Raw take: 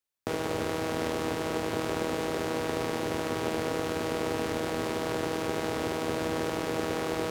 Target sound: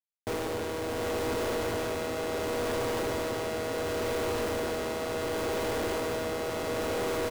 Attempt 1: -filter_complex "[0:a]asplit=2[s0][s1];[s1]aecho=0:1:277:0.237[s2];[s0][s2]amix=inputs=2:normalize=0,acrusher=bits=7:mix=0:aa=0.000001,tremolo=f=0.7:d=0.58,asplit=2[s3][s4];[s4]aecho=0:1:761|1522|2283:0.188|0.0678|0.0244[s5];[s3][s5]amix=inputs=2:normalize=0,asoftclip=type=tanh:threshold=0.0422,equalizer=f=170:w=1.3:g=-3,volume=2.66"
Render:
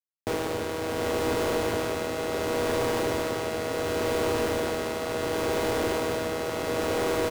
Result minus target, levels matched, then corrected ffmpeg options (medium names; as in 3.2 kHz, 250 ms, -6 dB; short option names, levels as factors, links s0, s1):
saturation: distortion -6 dB
-filter_complex "[0:a]asplit=2[s0][s1];[s1]aecho=0:1:277:0.237[s2];[s0][s2]amix=inputs=2:normalize=0,acrusher=bits=7:mix=0:aa=0.000001,tremolo=f=0.7:d=0.58,asplit=2[s3][s4];[s4]aecho=0:1:761|1522|2283:0.188|0.0678|0.0244[s5];[s3][s5]amix=inputs=2:normalize=0,asoftclip=type=tanh:threshold=0.0178,equalizer=f=170:w=1.3:g=-3,volume=2.66"